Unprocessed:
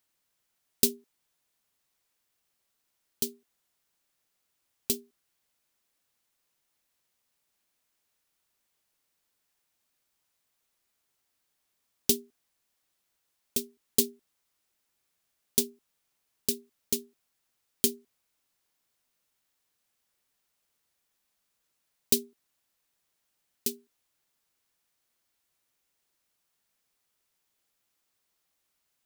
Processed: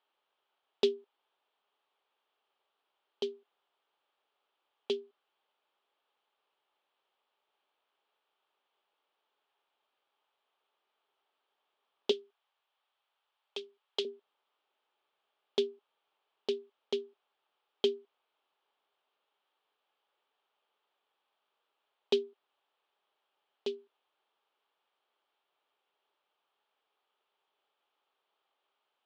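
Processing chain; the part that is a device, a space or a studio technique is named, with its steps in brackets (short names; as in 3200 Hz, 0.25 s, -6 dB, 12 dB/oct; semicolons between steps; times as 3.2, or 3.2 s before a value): 12.11–14.05 Bessel high-pass 730 Hz, order 2; phone earpiece (speaker cabinet 410–3400 Hz, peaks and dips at 410 Hz +9 dB, 590 Hz +4 dB, 840 Hz +9 dB, 1200 Hz +6 dB, 2000 Hz -5 dB, 3200 Hz +6 dB)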